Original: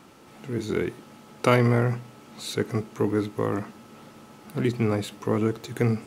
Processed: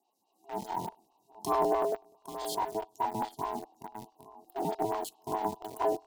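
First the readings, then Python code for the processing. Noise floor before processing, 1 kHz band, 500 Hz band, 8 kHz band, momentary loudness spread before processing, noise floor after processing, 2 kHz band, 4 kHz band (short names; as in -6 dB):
-50 dBFS, +2.5 dB, -6.5 dB, -3.5 dB, 15 LU, -75 dBFS, -16.0 dB, -8.5 dB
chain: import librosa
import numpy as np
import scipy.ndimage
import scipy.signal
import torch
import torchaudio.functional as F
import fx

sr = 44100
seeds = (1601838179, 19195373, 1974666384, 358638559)

p1 = fx.bin_expand(x, sr, power=1.5)
p2 = scipy.signal.sosfilt(scipy.signal.cheby1(5, 1.0, [590.0, 3300.0], 'bandstop', fs=sr, output='sos'), p1)
p3 = fx.high_shelf(p2, sr, hz=7800.0, db=5.0)
p4 = p3 + 10.0 ** (-13.0 / 20.0) * np.pad(p3, (int(810 * sr / 1000.0), 0))[:len(p3)]
p5 = fx.rev_double_slope(p4, sr, seeds[0], early_s=0.35, late_s=2.8, knee_db=-17, drr_db=19.5)
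p6 = p5 * np.sin(2.0 * np.pi * 540.0 * np.arange(len(p5)) / sr)
p7 = fx.highpass(p6, sr, hz=400.0, slope=6)
p8 = fx.quant_companded(p7, sr, bits=2)
p9 = p7 + F.gain(torch.from_numpy(p8), -12.0).numpy()
p10 = fx.buffer_crackle(p9, sr, first_s=0.6, period_s=0.1, block=1024, kind='repeat')
y = fx.stagger_phaser(p10, sr, hz=4.7)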